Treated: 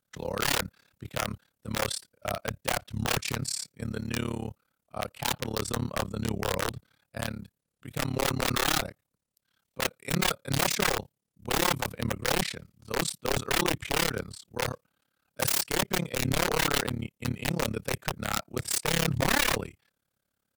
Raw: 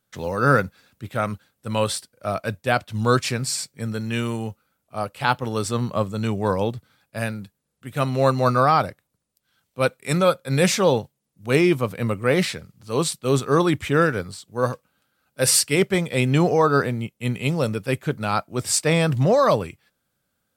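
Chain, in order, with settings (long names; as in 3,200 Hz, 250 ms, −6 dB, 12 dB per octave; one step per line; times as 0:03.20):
wrap-around overflow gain 14 dB
amplitude modulation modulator 35 Hz, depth 100%
level −2.5 dB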